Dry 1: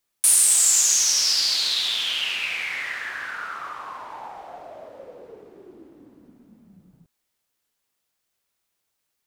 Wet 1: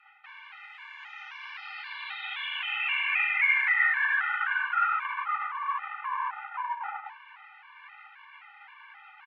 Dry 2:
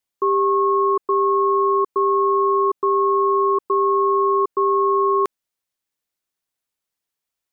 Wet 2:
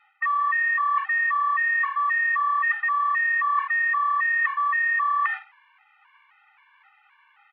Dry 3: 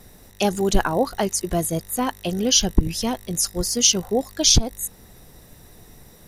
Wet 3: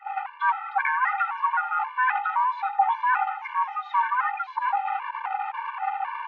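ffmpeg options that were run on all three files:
-filter_complex "[0:a]aeval=exprs='val(0)+0.5*0.0891*sgn(val(0))':channel_layout=same,asplit=2[link_01][link_02];[link_02]asplit=5[link_03][link_04][link_05][link_06][link_07];[link_03]adelay=81,afreqshift=-36,volume=-12dB[link_08];[link_04]adelay=162,afreqshift=-72,volume=-18.6dB[link_09];[link_05]adelay=243,afreqshift=-108,volume=-25.1dB[link_10];[link_06]adelay=324,afreqshift=-144,volume=-31.7dB[link_11];[link_07]adelay=405,afreqshift=-180,volume=-38.2dB[link_12];[link_08][link_09][link_10][link_11][link_12]amix=inputs=5:normalize=0[link_13];[link_01][link_13]amix=inputs=2:normalize=0,afreqshift=480,agate=range=-25dB:threshold=-24dB:ratio=16:detection=peak,areverse,acompressor=threshold=-24dB:ratio=10,areverse,highpass=frequency=170:width_type=q:width=0.5412,highpass=frequency=170:width_type=q:width=1.307,lowpass=frequency=2200:width_type=q:width=0.5176,lowpass=frequency=2200:width_type=q:width=0.7071,lowpass=frequency=2200:width_type=q:width=1.932,afreqshift=280,afftfilt=real='re*gt(sin(2*PI*1.9*pts/sr)*(1-2*mod(floor(b*sr/1024/300),2)),0)':imag='im*gt(sin(2*PI*1.9*pts/sr)*(1-2*mod(floor(b*sr/1024/300),2)),0)':win_size=1024:overlap=0.75,volume=7.5dB"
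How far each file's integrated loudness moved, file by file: −9.0, −3.5, −4.5 LU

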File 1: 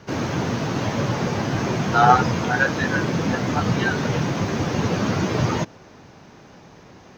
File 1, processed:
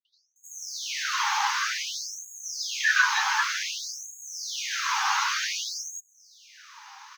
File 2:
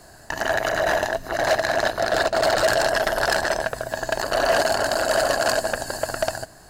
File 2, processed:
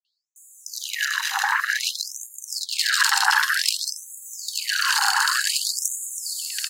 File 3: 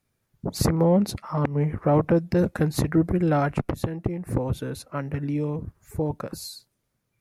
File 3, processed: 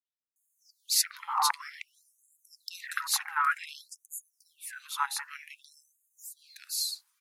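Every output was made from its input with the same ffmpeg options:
-filter_complex "[0:a]acrossover=split=190|2200[link_01][link_02][link_03];[link_02]adelay=50[link_04];[link_03]adelay=360[link_05];[link_01][link_04][link_05]amix=inputs=3:normalize=0,afftfilt=real='re*gte(b*sr/1024,750*pow(6500/750,0.5+0.5*sin(2*PI*0.54*pts/sr)))':imag='im*gte(b*sr/1024,750*pow(6500/750,0.5+0.5*sin(2*PI*0.54*pts/sr)))':win_size=1024:overlap=0.75,volume=7dB"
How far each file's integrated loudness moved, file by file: −5.0, 0.0, −5.5 LU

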